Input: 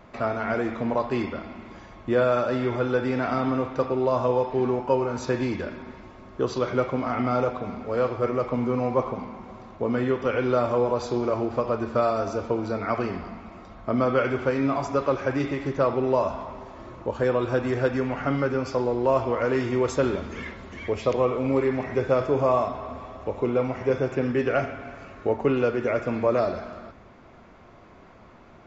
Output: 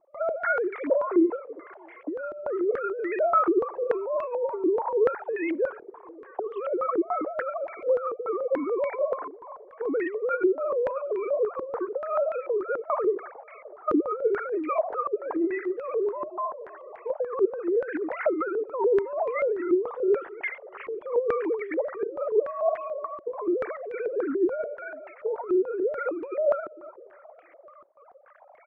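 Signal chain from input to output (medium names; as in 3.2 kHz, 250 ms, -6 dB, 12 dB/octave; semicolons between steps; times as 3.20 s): formants replaced by sine waves; compressor with a negative ratio -28 dBFS, ratio -1; feedback delay 658 ms, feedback 36%, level -24 dB; step-sequenced low-pass 6.9 Hz 360–2100 Hz; trim -3.5 dB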